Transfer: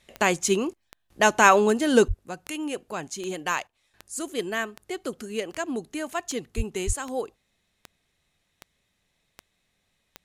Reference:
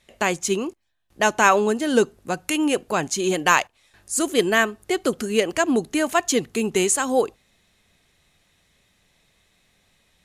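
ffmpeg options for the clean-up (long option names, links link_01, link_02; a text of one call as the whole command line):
ffmpeg -i in.wav -filter_complex "[0:a]adeclick=threshold=4,asplit=3[link_01][link_02][link_03];[link_01]afade=type=out:start_time=2.07:duration=0.02[link_04];[link_02]highpass=frequency=140:width=0.5412,highpass=frequency=140:width=1.3066,afade=type=in:start_time=2.07:duration=0.02,afade=type=out:start_time=2.19:duration=0.02[link_05];[link_03]afade=type=in:start_time=2.19:duration=0.02[link_06];[link_04][link_05][link_06]amix=inputs=3:normalize=0,asplit=3[link_07][link_08][link_09];[link_07]afade=type=out:start_time=6.56:duration=0.02[link_10];[link_08]highpass=frequency=140:width=0.5412,highpass=frequency=140:width=1.3066,afade=type=in:start_time=6.56:duration=0.02,afade=type=out:start_time=6.68:duration=0.02[link_11];[link_09]afade=type=in:start_time=6.68:duration=0.02[link_12];[link_10][link_11][link_12]amix=inputs=3:normalize=0,asplit=3[link_13][link_14][link_15];[link_13]afade=type=out:start_time=6.86:duration=0.02[link_16];[link_14]highpass=frequency=140:width=0.5412,highpass=frequency=140:width=1.3066,afade=type=in:start_time=6.86:duration=0.02,afade=type=out:start_time=6.98:duration=0.02[link_17];[link_15]afade=type=in:start_time=6.98:duration=0.02[link_18];[link_16][link_17][link_18]amix=inputs=3:normalize=0,asetnsamples=nb_out_samples=441:pad=0,asendcmd='2.08 volume volume 10dB',volume=0dB" out.wav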